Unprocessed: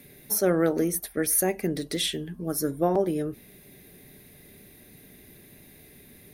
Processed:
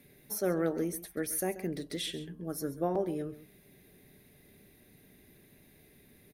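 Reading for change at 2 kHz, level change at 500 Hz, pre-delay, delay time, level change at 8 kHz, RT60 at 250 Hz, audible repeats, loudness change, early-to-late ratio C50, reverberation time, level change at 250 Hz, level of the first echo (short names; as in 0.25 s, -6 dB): -8.0 dB, -7.5 dB, none, 0.134 s, -11.0 dB, none, 1, -8.5 dB, none, none, -7.5 dB, -15.5 dB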